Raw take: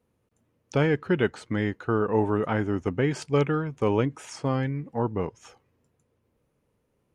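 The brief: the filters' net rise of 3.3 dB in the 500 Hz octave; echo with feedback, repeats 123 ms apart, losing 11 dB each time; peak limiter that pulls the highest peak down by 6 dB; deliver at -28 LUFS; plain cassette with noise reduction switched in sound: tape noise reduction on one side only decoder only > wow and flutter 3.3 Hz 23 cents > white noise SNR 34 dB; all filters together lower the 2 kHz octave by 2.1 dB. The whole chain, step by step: peaking EQ 500 Hz +4 dB; peaking EQ 2 kHz -3 dB; peak limiter -14 dBFS; feedback delay 123 ms, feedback 28%, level -11 dB; tape noise reduction on one side only decoder only; wow and flutter 3.3 Hz 23 cents; white noise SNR 34 dB; trim -1.5 dB

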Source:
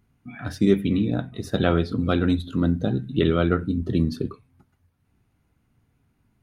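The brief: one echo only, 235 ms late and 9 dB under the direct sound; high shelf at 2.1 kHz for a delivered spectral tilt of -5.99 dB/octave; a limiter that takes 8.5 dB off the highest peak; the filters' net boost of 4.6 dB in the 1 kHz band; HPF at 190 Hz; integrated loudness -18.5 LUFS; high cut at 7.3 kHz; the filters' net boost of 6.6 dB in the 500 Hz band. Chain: high-pass 190 Hz; low-pass 7.3 kHz; peaking EQ 500 Hz +8 dB; peaking EQ 1 kHz +5.5 dB; treble shelf 2.1 kHz -4 dB; peak limiter -10.5 dBFS; delay 235 ms -9 dB; trim +5 dB

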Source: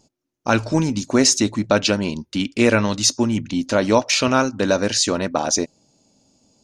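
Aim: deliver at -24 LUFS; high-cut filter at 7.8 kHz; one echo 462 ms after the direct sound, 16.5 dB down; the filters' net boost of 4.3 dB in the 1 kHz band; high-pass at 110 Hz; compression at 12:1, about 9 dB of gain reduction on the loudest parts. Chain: high-pass 110 Hz; low-pass 7.8 kHz; peaking EQ 1 kHz +5.5 dB; compression 12:1, threshold -18 dBFS; delay 462 ms -16.5 dB

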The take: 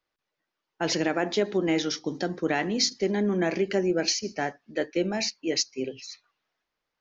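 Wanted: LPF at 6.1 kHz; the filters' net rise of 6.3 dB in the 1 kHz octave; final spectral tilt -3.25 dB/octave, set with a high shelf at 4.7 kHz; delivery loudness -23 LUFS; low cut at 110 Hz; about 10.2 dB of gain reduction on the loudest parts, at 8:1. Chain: high-pass 110 Hz; low-pass 6.1 kHz; peaking EQ 1 kHz +9 dB; treble shelf 4.7 kHz +8 dB; compression 8:1, threshold -29 dBFS; trim +10.5 dB

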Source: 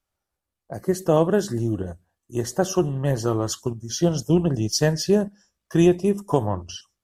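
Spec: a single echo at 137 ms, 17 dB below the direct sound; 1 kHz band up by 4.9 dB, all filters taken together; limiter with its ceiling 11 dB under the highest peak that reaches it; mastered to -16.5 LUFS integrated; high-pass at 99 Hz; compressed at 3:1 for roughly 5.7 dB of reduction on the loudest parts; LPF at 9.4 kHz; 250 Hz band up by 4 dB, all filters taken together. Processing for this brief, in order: high-pass 99 Hz; low-pass 9.4 kHz; peaking EQ 250 Hz +6.5 dB; peaking EQ 1 kHz +6 dB; compression 3:1, threshold -16 dBFS; peak limiter -15 dBFS; delay 137 ms -17 dB; trim +10 dB

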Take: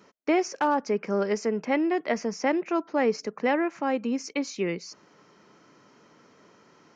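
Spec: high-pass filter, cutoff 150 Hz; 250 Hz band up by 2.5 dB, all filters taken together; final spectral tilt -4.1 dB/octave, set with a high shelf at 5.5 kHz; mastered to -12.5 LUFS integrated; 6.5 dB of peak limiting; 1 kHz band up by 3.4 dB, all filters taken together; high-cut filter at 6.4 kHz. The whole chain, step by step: high-pass 150 Hz; low-pass 6.4 kHz; peaking EQ 250 Hz +3.5 dB; peaking EQ 1 kHz +4 dB; treble shelf 5.5 kHz +5.5 dB; trim +15.5 dB; peak limiter -2 dBFS

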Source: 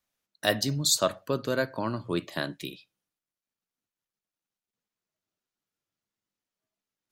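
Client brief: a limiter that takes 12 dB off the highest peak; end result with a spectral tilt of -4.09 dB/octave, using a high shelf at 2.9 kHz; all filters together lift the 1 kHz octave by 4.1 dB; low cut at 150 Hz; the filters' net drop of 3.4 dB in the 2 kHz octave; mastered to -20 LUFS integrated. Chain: high-pass 150 Hz; peaking EQ 1 kHz +7.5 dB; peaking EQ 2 kHz -6.5 dB; treble shelf 2.9 kHz -3.5 dB; trim +14 dB; peak limiter -7.5 dBFS

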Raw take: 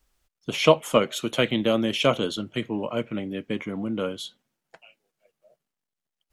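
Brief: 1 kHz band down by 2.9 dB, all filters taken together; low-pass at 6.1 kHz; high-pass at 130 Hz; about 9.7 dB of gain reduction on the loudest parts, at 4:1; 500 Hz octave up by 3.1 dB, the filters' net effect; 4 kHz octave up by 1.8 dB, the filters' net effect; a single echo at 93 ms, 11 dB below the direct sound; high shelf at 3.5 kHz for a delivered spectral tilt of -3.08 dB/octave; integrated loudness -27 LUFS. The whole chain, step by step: high-pass 130 Hz; low-pass 6.1 kHz; peaking EQ 500 Hz +5 dB; peaking EQ 1 kHz -5 dB; treble shelf 3.5 kHz -4 dB; peaking EQ 4 kHz +6 dB; compression 4:1, threshold -20 dBFS; delay 93 ms -11 dB

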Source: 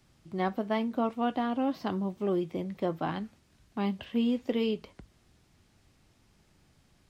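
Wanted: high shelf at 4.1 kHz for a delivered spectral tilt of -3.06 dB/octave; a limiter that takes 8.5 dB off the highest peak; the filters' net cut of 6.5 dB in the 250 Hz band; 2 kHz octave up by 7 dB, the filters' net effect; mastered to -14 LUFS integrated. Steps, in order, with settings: peaking EQ 250 Hz -8 dB; peaking EQ 2 kHz +7 dB; treble shelf 4.1 kHz +8.5 dB; trim +21.5 dB; peak limiter -2 dBFS

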